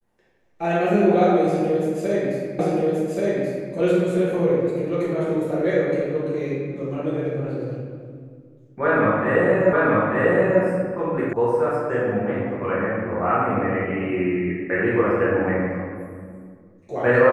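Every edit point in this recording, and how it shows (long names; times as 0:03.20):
0:02.59: the same again, the last 1.13 s
0:09.73: the same again, the last 0.89 s
0:11.33: cut off before it has died away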